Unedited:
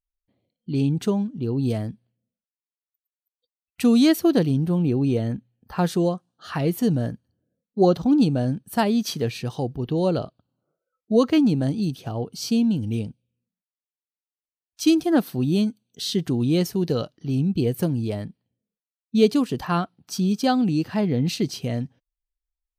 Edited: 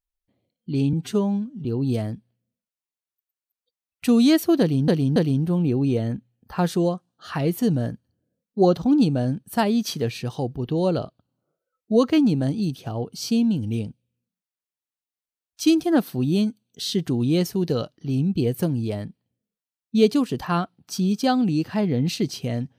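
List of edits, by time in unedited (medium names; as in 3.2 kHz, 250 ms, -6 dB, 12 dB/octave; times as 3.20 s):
0.93–1.41 s: stretch 1.5×
4.36–4.64 s: loop, 3 plays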